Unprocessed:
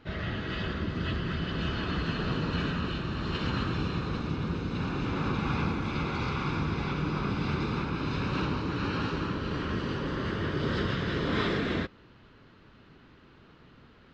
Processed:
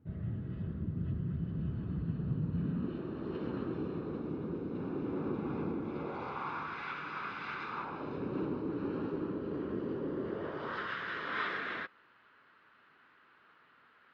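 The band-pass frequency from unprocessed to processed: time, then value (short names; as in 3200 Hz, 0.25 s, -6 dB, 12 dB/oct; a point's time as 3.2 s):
band-pass, Q 1.5
2.52 s 130 Hz
3.02 s 370 Hz
5.86 s 370 Hz
6.82 s 1600 Hz
7.63 s 1600 Hz
8.24 s 370 Hz
10.22 s 370 Hz
10.89 s 1500 Hz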